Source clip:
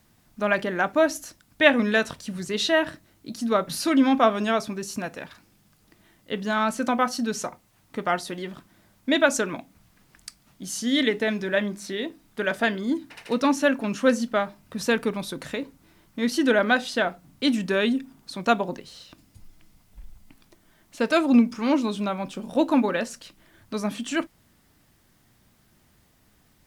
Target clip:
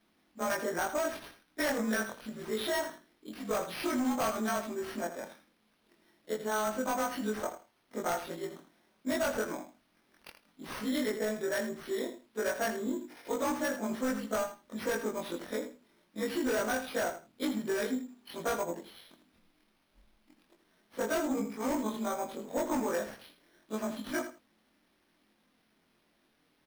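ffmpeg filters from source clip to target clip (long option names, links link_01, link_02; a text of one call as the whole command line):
ffmpeg -i in.wav -filter_complex "[0:a]afftfilt=real='re':imag='-im':win_size=2048:overlap=0.75,bass=frequency=250:gain=-14,treble=frequency=4000:gain=0,flanger=delay=3.3:depth=5.4:regen=-56:speed=0.2:shape=sinusoidal,lowshelf=frequency=150:width_type=q:width=1.5:gain=-8,asplit=2[link_01][link_02];[link_02]adynamicsmooth=sensitivity=5.5:basefreq=560,volume=3dB[link_03];[link_01][link_03]amix=inputs=2:normalize=0,asuperstop=centerf=2700:order=4:qfactor=5.9,acrossover=split=1800[link_04][link_05];[link_05]alimiter=level_in=1dB:limit=-24dB:level=0:latency=1:release=247,volume=-1dB[link_06];[link_04][link_06]amix=inputs=2:normalize=0,volume=21.5dB,asoftclip=hard,volume=-21.5dB,acompressor=threshold=-29dB:ratio=6,aecho=1:1:81|162:0.299|0.0537,acrusher=samples=6:mix=1:aa=0.000001" out.wav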